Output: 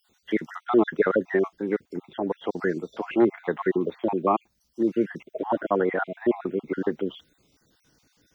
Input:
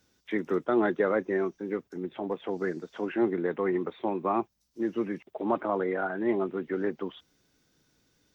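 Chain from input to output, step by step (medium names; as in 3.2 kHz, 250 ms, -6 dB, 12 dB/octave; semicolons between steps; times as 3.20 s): random holes in the spectrogram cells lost 40%; trim +6.5 dB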